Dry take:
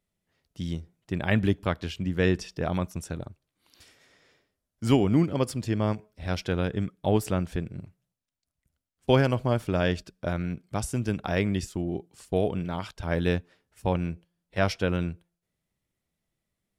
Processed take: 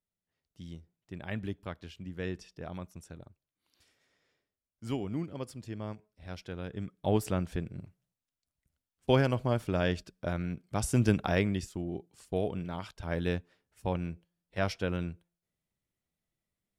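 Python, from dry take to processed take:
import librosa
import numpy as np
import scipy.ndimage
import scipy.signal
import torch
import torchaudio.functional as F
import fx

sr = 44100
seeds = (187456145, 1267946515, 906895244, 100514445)

y = fx.gain(x, sr, db=fx.line((6.59, -13.0), (7.1, -4.0), (10.7, -4.0), (11.02, 4.0), (11.64, -6.0)))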